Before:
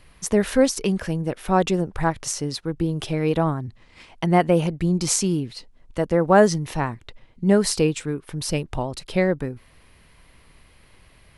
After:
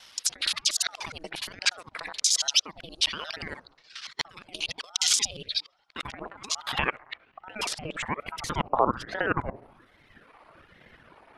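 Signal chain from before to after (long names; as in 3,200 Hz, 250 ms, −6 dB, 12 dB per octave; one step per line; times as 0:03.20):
reversed piece by piece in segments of 59 ms
reverb reduction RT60 1.4 s
compressor whose output falls as the input rises −25 dBFS, ratio −0.5
band-pass filter sweep 4,200 Hz → 820 Hz, 0:04.97–0:08.96
on a send: delay with a low-pass on its return 68 ms, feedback 69%, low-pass 900 Hz, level −20 dB
on the sum: boost into a limiter +21 dB
ring modulator whose carrier an LFO sweeps 630 Hz, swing 80%, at 1.2 Hz
level −6 dB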